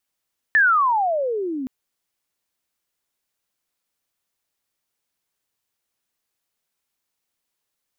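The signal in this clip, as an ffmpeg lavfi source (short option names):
-f lavfi -i "aevalsrc='pow(10,(-11.5-13.5*t/1.12)/20)*sin(2*PI*1800*1.12/log(250/1800)*(exp(log(250/1800)*t/1.12)-1))':d=1.12:s=44100"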